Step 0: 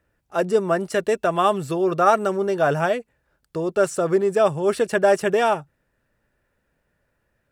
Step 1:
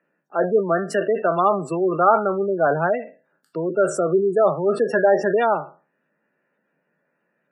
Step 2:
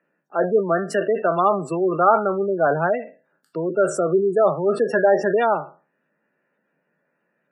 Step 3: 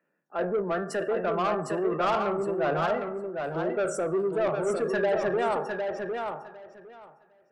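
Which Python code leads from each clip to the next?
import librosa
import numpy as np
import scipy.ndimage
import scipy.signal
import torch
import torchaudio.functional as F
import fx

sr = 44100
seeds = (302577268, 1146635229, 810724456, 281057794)

y1 = fx.spec_trails(x, sr, decay_s=0.35)
y1 = scipy.signal.sosfilt(scipy.signal.butter(12, 150.0, 'highpass', fs=sr, output='sos'), y1)
y1 = fx.spec_gate(y1, sr, threshold_db=-20, keep='strong')
y2 = y1
y3 = fx.rev_plate(y2, sr, seeds[0], rt60_s=1.1, hf_ratio=0.45, predelay_ms=0, drr_db=13.0)
y3 = 10.0 ** (-16.0 / 20.0) * np.tanh(y3 / 10.0 ** (-16.0 / 20.0))
y3 = fx.echo_feedback(y3, sr, ms=756, feedback_pct=16, wet_db=-5.0)
y3 = y3 * librosa.db_to_amplitude(-5.5)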